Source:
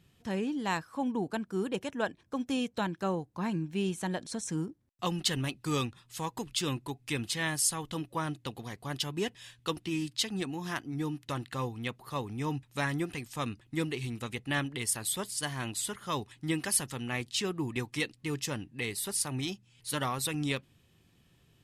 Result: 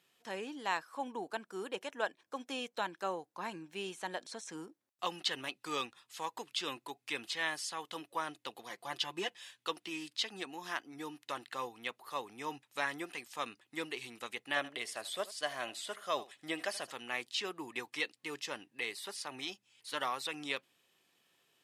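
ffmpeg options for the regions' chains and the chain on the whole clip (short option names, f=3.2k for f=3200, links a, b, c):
-filter_complex "[0:a]asettb=1/sr,asplit=3[a][b][c];[a]atrim=end=8.694[d];[b]atrim=start=8.69:end=9.44,asetpts=PTS-STARTPTS,afade=t=in:d=0.004:c=qsin,afade=t=out:st=0.746:d=0.004:c=qsin,highshelf=f=9.4k:g=-4,aecho=1:1:5.8:0.81,atrim=end_sample=33075[e];[c]atrim=start=9.436[f];[d][e]acrossfade=d=0.004:c1=hsin:c2=qsin[g];[g][f]acrossfade=d=0.004:c1=qsin:c2=hsin,asettb=1/sr,asplit=3[h][i][j];[h]atrim=end=14.564[k];[i]atrim=start=14.56:end=16.91,asetpts=PTS-STARTPTS,afade=t=in:d=0.004:c=qsin,afade=t=out:st=2.346:d=0.004:c=qsin,equalizer=f=630:w=3.5:g=10.5,bandreject=f=900:w=8.2,aecho=1:1:79:0.119,atrim=end_sample=103635[l];[j]atrim=start=16.906[m];[k][l]acrossfade=d=0.004:c1=hsin:c2=qsin[n];[n][m]acrossfade=d=0.004:c1=qsin:c2=hsin,acrossover=split=5300[o][p];[p]acompressor=threshold=-51dB:ratio=4:attack=1:release=60[q];[o][q]amix=inputs=2:normalize=0,highpass=520,volume=-1.5dB"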